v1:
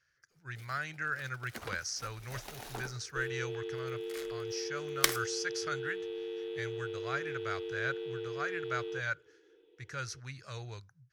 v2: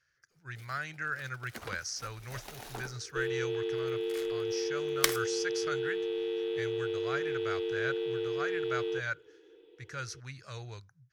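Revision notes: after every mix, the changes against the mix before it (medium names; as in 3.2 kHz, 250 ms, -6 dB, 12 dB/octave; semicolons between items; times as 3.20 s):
second sound +6.0 dB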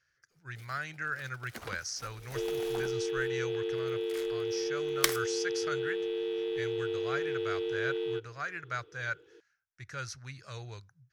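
second sound: entry -0.80 s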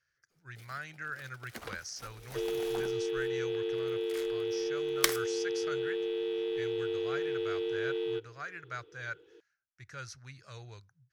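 speech -4.5 dB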